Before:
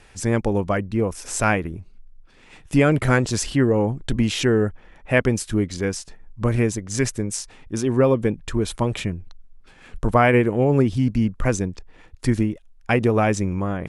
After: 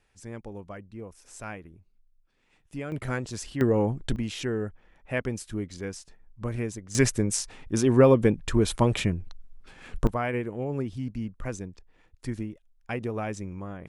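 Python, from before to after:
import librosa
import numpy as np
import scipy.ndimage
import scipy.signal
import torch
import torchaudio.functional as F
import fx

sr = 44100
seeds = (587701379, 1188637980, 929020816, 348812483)

y = fx.gain(x, sr, db=fx.steps((0.0, -19.0), (2.92, -12.5), (3.61, -4.0), (4.16, -11.0), (6.95, 0.0), (10.07, -13.0)))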